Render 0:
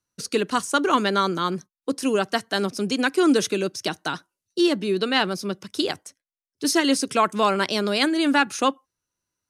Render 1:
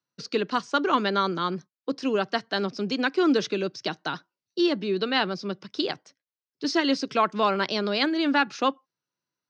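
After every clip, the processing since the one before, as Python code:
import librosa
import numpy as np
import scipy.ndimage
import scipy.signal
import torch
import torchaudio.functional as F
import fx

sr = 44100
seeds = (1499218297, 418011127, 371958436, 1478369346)

y = scipy.signal.sosfilt(scipy.signal.ellip(3, 1.0, 40, [130.0, 5000.0], 'bandpass', fs=sr, output='sos'), x)
y = y * 10.0 ** (-2.5 / 20.0)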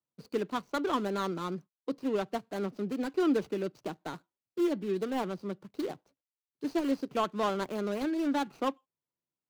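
y = scipy.signal.medfilt(x, 25)
y = y * 10.0 ** (-5.0 / 20.0)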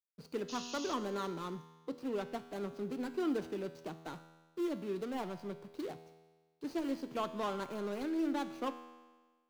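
y = fx.law_mismatch(x, sr, coded='mu')
y = fx.spec_paint(y, sr, seeds[0], shape='noise', start_s=0.48, length_s=0.46, low_hz=2500.0, high_hz=6900.0, level_db=-40.0)
y = fx.comb_fb(y, sr, f0_hz=81.0, decay_s=1.4, harmonics='all', damping=0.0, mix_pct=70)
y = y * 10.0 ** (1.5 / 20.0)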